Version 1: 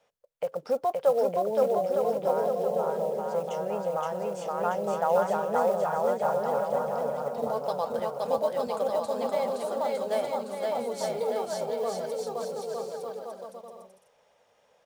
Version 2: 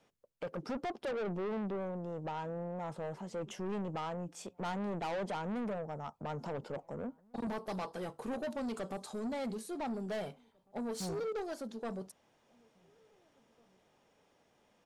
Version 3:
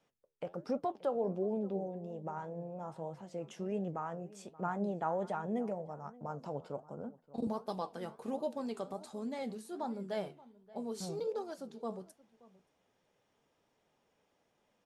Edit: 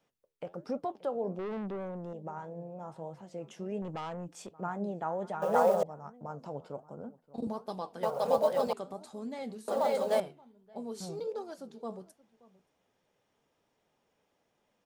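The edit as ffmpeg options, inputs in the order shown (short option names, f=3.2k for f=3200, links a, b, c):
-filter_complex "[1:a]asplit=2[a][b];[0:a]asplit=3[c][d][e];[2:a]asplit=6[f][g][h][i][j][k];[f]atrim=end=1.392[l];[a]atrim=start=1.388:end=2.132[m];[g]atrim=start=2.128:end=3.822[n];[b]atrim=start=3.818:end=4.512[o];[h]atrim=start=4.508:end=5.422[p];[c]atrim=start=5.418:end=5.832[q];[i]atrim=start=5.828:end=8.032[r];[d]atrim=start=8.028:end=8.732[s];[j]atrim=start=8.728:end=9.682[t];[e]atrim=start=9.678:end=10.202[u];[k]atrim=start=10.198[v];[l][m]acrossfade=d=0.004:c1=hsin:c2=hsin[w];[w][n]acrossfade=d=0.004:c1=hsin:c2=hsin[x];[x][o]acrossfade=d=0.004:c1=hsin:c2=hsin[y];[y][p]acrossfade=d=0.004:c1=hsin:c2=hsin[z];[z][q]acrossfade=d=0.004:c1=hsin:c2=hsin[aa];[aa][r]acrossfade=d=0.004:c1=hsin:c2=hsin[ab];[ab][s]acrossfade=d=0.004:c1=hsin:c2=hsin[ac];[ac][t]acrossfade=d=0.004:c1=hsin:c2=hsin[ad];[ad][u]acrossfade=d=0.004:c1=hsin:c2=hsin[ae];[ae][v]acrossfade=d=0.004:c1=hsin:c2=hsin"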